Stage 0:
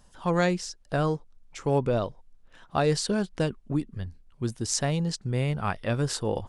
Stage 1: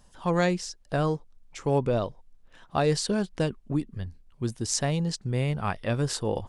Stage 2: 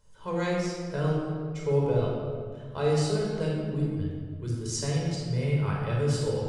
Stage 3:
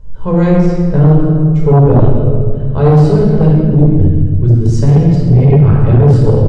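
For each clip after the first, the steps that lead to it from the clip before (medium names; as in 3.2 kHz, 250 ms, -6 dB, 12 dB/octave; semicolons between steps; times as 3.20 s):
peaking EQ 1.4 kHz -2.5 dB 0.25 oct
feedback comb 430 Hz, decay 0.17 s, harmonics odd, mix 80%; simulated room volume 2600 m³, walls mixed, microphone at 4.9 m; trim +1.5 dB
tilt EQ -4.5 dB/octave; delay 135 ms -12 dB; sine folder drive 8 dB, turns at -2.5 dBFS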